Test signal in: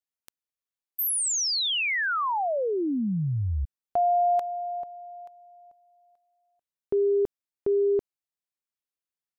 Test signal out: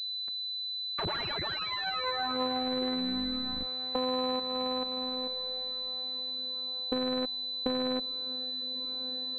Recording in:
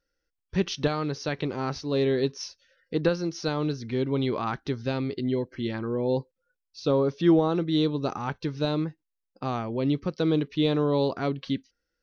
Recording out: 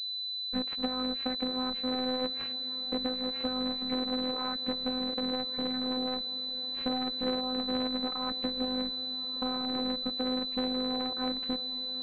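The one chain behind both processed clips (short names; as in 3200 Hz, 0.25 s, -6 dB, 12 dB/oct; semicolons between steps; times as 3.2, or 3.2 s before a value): cycle switcher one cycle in 3, inverted; resonant low shelf 100 Hz -12 dB, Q 3; compressor 6:1, threshold -35 dBFS; robotiser 255 Hz; on a send: diffused feedback echo 1.287 s, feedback 43%, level -14 dB; on the sum: pulse-width modulation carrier 4000 Hz; gain +6 dB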